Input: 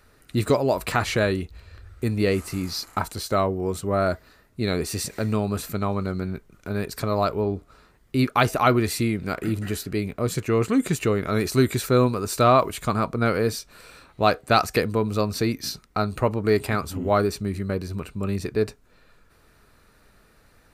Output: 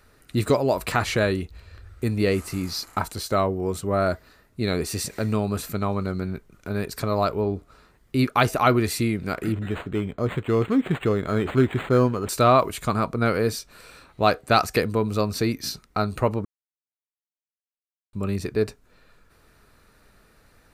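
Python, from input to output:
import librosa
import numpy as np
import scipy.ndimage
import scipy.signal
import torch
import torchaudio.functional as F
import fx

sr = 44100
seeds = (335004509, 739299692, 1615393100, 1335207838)

y = fx.resample_linear(x, sr, factor=8, at=(9.52, 12.29))
y = fx.edit(y, sr, fx.silence(start_s=16.45, length_s=1.68), tone=tone)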